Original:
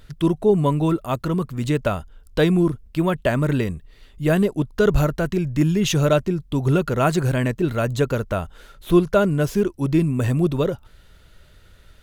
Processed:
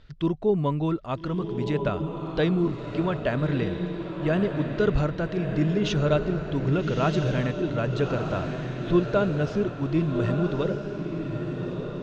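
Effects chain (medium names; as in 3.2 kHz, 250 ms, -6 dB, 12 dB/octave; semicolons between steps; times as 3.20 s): low-pass 5.2 kHz 24 dB/octave; echo that smears into a reverb 1261 ms, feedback 44%, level -5.5 dB; trim -6 dB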